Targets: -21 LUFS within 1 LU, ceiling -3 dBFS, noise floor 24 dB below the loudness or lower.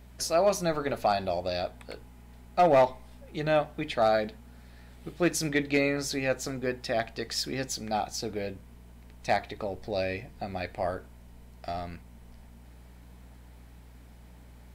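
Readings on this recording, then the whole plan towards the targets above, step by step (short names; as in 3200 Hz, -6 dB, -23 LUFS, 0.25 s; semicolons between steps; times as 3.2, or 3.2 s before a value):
hum 60 Hz; harmonics up to 180 Hz; hum level -48 dBFS; loudness -29.0 LUFS; peak -14.5 dBFS; loudness target -21.0 LUFS
-> de-hum 60 Hz, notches 3; gain +8 dB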